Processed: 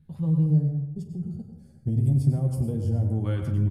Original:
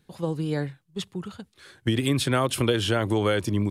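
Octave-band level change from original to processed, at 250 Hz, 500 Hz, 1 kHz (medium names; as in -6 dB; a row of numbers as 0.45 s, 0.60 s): -1.0 dB, -12.0 dB, under -15 dB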